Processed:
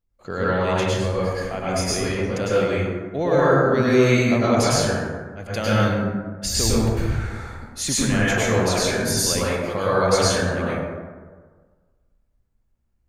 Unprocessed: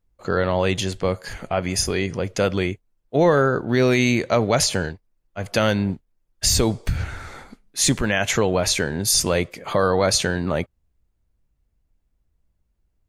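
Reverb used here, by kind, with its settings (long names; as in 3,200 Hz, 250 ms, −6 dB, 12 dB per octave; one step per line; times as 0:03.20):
dense smooth reverb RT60 1.5 s, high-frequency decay 0.4×, pre-delay 90 ms, DRR −8 dB
level −8 dB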